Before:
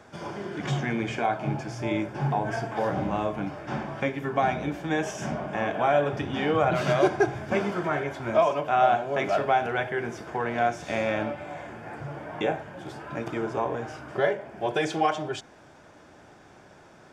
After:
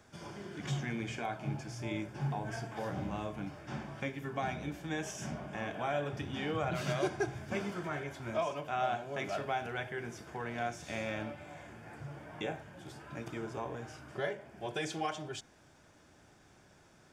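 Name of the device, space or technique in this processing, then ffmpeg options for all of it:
smiley-face EQ: -af "lowshelf=frequency=84:gain=6,equalizer=frequency=680:width_type=o:width=2.5:gain=-5,highshelf=frequency=5600:gain=8,volume=-8dB"

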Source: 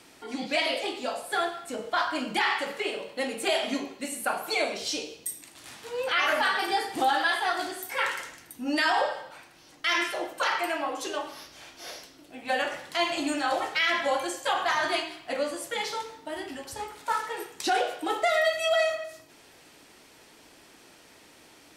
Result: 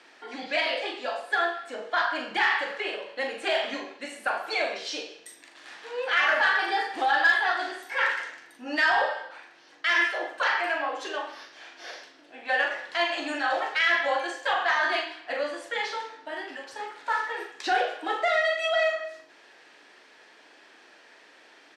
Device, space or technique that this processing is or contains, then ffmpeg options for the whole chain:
intercom: -filter_complex "[0:a]highpass=400,lowpass=4400,equalizer=frequency=1700:width_type=o:width=0.26:gain=8.5,asoftclip=type=tanh:threshold=-12.5dB,asplit=2[link_01][link_02];[link_02]adelay=41,volume=-7dB[link_03];[link_01][link_03]amix=inputs=2:normalize=0"

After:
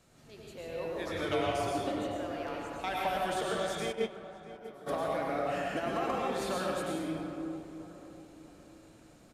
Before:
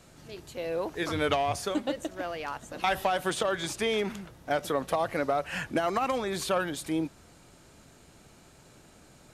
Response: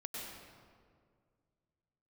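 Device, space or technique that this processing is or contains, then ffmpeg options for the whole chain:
stairwell: -filter_complex "[1:a]atrim=start_sample=2205[link_01];[0:a][link_01]afir=irnorm=-1:irlink=0,asplit=3[link_02][link_03][link_04];[link_02]afade=type=out:start_time=3.91:duration=0.02[link_05];[link_03]agate=range=-19dB:threshold=-23dB:ratio=16:detection=peak,afade=type=in:start_time=3.91:duration=0.02,afade=type=out:start_time=4.86:duration=0.02[link_06];[link_04]afade=type=in:start_time=4.86:duration=0.02[link_07];[link_05][link_06][link_07]amix=inputs=3:normalize=0,asplit=2[link_08][link_09];[link_09]adelay=646,lowpass=frequency=1500:poles=1,volume=-13dB,asplit=2[link_10][link_11];[link_11]adelay=646,lowpass=frequency=1500:poles=1,volume=0.48,asplit=2[link_12][link_13];[link_13]adelay=646,lowpass=frequency=1500:poles=1,volume=0.48,asplit=2[link_14][link_15];[link_15]adelay=646,lowpass=frequency=1500:poles=1,volume=0.48,asplit=2[link_16][link_17];[link_17]adelay=646,lowpass=frequency=1500:poles=1,volume=0.48[link_18];[link_08][link_10][link_12][link_14][link_16][link_18]amix=inputs=6:normalize=0,volume=-4dB"

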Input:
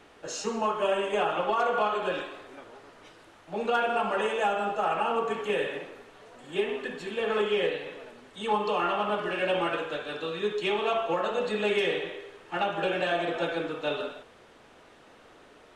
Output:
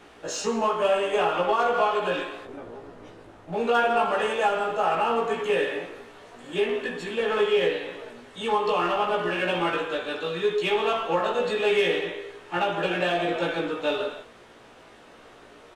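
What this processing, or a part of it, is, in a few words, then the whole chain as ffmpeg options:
parallel distortion: -filter_complex "[0:a]asettb=1/sr,asplit=3[link_01][link_02][link_03];[link_01]atrim=end=2.454[link_04];[link_02]atrim=start=2.45:end=3.53,asetpts=PTS-STARTPTS,afade=type=in:duration=0.004:curve=qsin,afade=type=out:start_time=1.076:duration=0.004:curve=qsin,tiltshelf=frequency=850:gain=7.5[link_05];[link_03]atrim=start=3.526[link_06];[link_04][link_05]acrossfade=duration=0.004:curve1=hsin:curve2=qsin[link_07];[link_07][link_06]acrossfade=duration=0.004:curve1=qsin:curve2=hsin,asplit=2[link_08][link_09];[link_09]asoftclip=type=hard:threshold=-31.5dB,volume=-9dB[link_10];[link_08][link_10]amix=inputs=2:normalize=0,asplit=2[link_11][link_12];[link_12]adelay=17,volume=-2.5dB[link_13];[link_11][link_13]amix=inputs=2:normalize=0"

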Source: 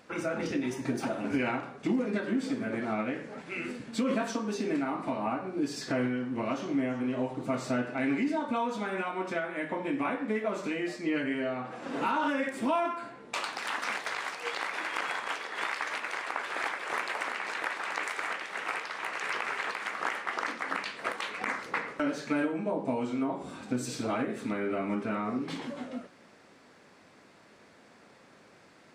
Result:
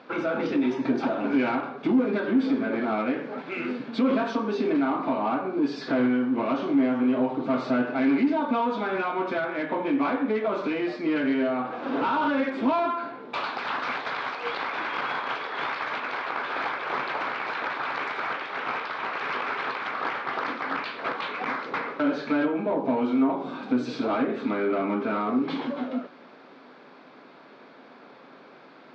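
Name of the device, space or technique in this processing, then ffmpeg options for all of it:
overdrive pedal into a guitar cabinet: -filter_complex "[0:a]asplit=2[link_01][link_02];[link_02]highpass=frequency=720:poles=1,volume=18dB,asoftclip=type=tanh:threshold=-16dB[link_03];[link_01][link_03]amix=inputs=2:normalize=0,lowpass=frequency=3200:poles=1,volume=-6dB,highpass=100,equalizer=frequency=100:width_type=q:width=4:gain=-8,equalizer=frequency=140:width_type=q:width=4:gain=6,equalizer=frequency=260:width_type=q:width=4:gain=8,equalizer=frequency=400:width_type=q:width=4:gain=3,equalizer=frequency=1900:width_type=q:width=4:gain=-8,equalizer=frequency=2800:width_type=q:width=4:gain=-5,lowpass=frequency=4100:width=0.5412,lowpass=frequency=4100:width=1.3066,volume=-1dB"

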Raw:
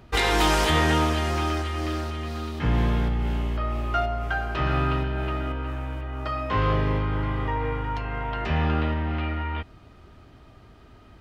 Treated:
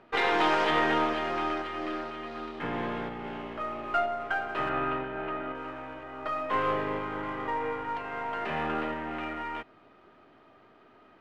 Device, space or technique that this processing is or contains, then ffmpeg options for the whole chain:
crystal radio: -filter_complex "[0:a]highpass=320,lowpass=2500,aeval=exprs='if(lt(val(0),0),0.708*val(0),val(0))':channel_layout=same,asettb=1/sr,asplit=3[link_01][link_02][link_03];[link_01]atrim=end=4.694[link_04];[link_02]atrim=start=4.69:end=5.55,asetpts=PTS-STARTPTS,afade=type=in:duration=0.004:curve=qsin,afade=type=out:start_time=0.856:duration=0.004:curve=qsin,lowpass=3100[link_05];[link_03]atrim=start=5.546[link_06];[link_04][link_05]acrossfade=duration=0.004:curve1=hsin:curve2=qsin[link_07];[link_07][link_06]acrossfade=duration=0.004:curve1=qsin:curve2=hsin"

